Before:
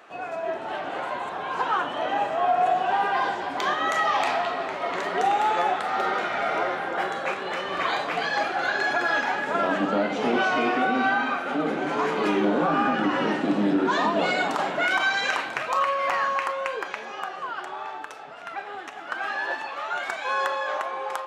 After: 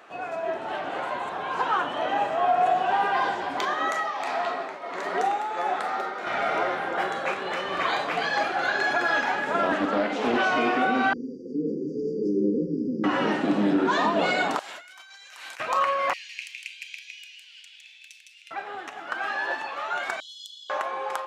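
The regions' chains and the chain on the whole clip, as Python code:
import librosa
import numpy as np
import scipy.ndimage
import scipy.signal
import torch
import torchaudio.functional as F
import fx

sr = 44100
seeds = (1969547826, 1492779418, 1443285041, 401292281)

y = fx.chain(x, sr, fx.highpass(hz=190.0, slope=12),
    fx.peak_eq(hz=3000.0, db=-4.5, octaves=0.52),
    fx.tremolo_shape(shape='triangle', hz=1.5, depth_pct=65), at=(3.65, 6.27))
y = fx.chain(y, sr, fx.cheby1_highpass(hz=230.0, order=3),
    fx.doppler_dist(depth_ms=0.23), at=(9.72, 10.43))
y = fx.chain(y, sr, fx.brickwall_bandstop(low_hz=520.0, high_hz=4600.0),
    fx.air_absorb(metres=210.0), at=(11.13, 13.04))
y = fx.chain(y, sr, fx.differentiator(),
    fx.over_compress(threshold_db=-45.0, ratio=-1.0), at=(14.59, 15.6))
y = fx.chain(y, sr, fx.ellip_highpass(hz=2400.0, order=4, stop_db=50),
    fx.echo_single(ms=159, db=-3.5), at=(16.13, 18.51))
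y = fx.chain(y, sr, fx.brickwall_highpass(low_hz=2900.0),
    fx.high_shelf(hz=7800.0, db=-5.0), at=(20.2, 20.7))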